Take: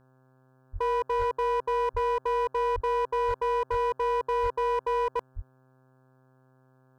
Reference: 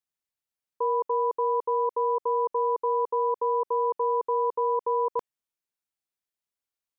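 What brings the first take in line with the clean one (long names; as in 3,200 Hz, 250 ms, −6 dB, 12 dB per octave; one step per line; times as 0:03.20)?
clipped peaks rebuilt −22.5 dBFS
hum removal 130 Hz, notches 13
high-pass at the plosives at 0:00.72/0:01.18/0:01.93/0:02.74/0:03.27/0:03.70/0:04.42/0:05.35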